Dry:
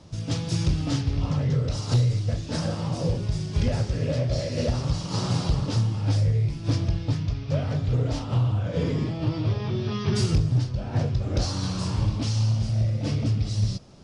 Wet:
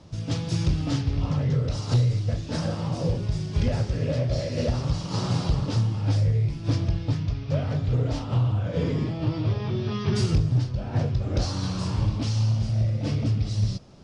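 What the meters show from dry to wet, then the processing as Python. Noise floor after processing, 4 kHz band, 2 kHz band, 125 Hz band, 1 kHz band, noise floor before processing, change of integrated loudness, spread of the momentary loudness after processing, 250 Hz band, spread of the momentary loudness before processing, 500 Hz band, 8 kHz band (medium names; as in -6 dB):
-34 dBFS, -1.5 dB, -0.5 dB, 0.0 dB, 0.0 dB, -34 dBFS, 0.0 dB, 5 LU, 0.0 dB, 5 LU, 0.0 dB, -3.0 dB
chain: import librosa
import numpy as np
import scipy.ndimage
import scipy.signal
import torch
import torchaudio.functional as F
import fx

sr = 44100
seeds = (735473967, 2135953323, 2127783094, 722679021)

y = fx.high_shelf(x, sr, hz=7400.0, db=-7.5)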